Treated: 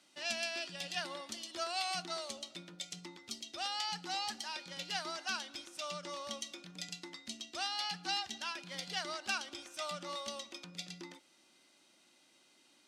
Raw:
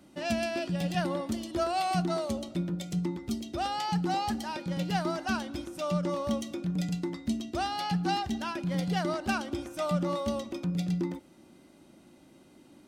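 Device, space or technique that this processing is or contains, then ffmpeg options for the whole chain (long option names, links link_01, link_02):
piezo pickup straight into a mixer: -af "lowpass=5000,aderivative,volume=8.5dB"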